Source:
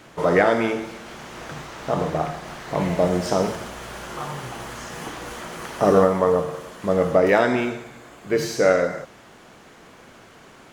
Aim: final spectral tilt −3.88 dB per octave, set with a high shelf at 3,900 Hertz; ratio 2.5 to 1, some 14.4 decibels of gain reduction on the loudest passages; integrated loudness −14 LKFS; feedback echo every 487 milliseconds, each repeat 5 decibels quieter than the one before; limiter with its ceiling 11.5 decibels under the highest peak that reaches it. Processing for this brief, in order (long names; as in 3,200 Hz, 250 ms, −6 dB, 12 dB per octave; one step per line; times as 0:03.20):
high-shelf EQ 3,900 Hz +5 dB
downward compressor 2.5 to 1, threshold −34 dBFS
brickwall limiter −27 dBFS
repeating echo 487 ms, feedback 56%, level −5 dB
level +22 dB